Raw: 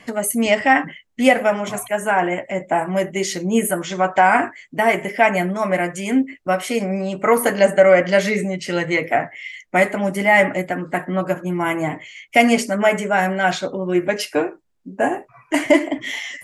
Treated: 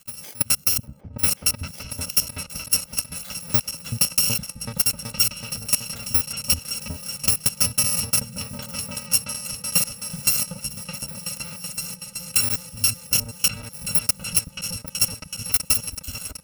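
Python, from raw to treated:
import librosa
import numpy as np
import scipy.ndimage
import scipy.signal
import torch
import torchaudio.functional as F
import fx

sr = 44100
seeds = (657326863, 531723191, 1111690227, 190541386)

p1 = fx.bit_reversed(x, sr, seeds[0], block=128)
p2 = fx.level_steps(p1, sr, step_db=16)
p3 = fx.transient(p2, sr, attack_db=9, sustain_db=-12)
p4 = p3 + fx.echo_opening(p3, sr, ms=377, hz=200, octaves=2, feedback_pct=70, wet_db=0, dry=0)
y = p4 * librosa.db_to_amplitude(-7.5)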